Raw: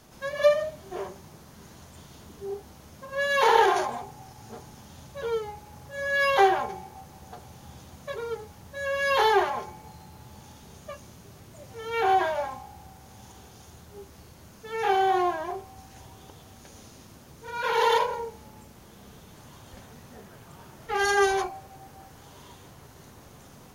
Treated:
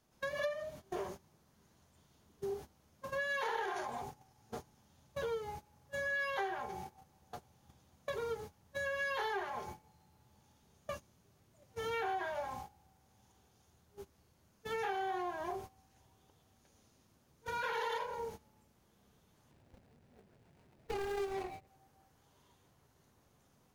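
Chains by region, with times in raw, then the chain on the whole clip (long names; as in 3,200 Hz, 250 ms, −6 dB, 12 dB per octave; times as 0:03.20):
0:19.51–0:21.67: running median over 41 samples + upward compression, threshold −40 dBFS + one half of a high-frequency compander encoder only
whole clip: noise gate −41 dBFS, range −20 dB; dynamic equaliser 1,700 Hz, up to +5 dB, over −36 dBFS; downward compressor 6 to 1, threshold −36 dBFS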